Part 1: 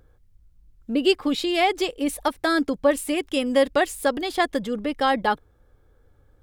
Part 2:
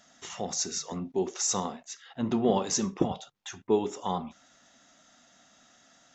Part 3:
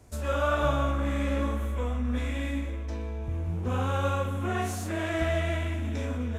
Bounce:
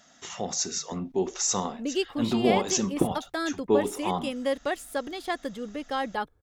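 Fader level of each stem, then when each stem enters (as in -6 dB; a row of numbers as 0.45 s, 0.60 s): -8.5 dB, +2.0 dB, mute; 0.90 s, 0.00 s, mute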